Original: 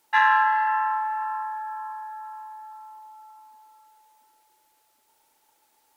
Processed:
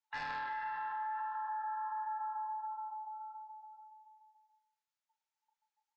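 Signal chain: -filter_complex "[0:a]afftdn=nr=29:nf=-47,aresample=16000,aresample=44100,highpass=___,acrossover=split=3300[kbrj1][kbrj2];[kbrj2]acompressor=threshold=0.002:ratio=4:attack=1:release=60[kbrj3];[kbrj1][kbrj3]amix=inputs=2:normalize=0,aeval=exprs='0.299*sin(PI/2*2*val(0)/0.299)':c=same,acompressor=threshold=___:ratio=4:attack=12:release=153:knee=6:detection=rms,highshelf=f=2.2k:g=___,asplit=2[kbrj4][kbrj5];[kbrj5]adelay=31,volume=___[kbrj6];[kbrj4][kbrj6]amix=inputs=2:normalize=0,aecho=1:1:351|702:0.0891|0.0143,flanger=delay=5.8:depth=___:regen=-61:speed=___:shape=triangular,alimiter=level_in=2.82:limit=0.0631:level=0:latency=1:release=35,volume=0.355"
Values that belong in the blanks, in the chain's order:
1.1k, 0.0282, -3.5, 0.501, 2.8, 1.4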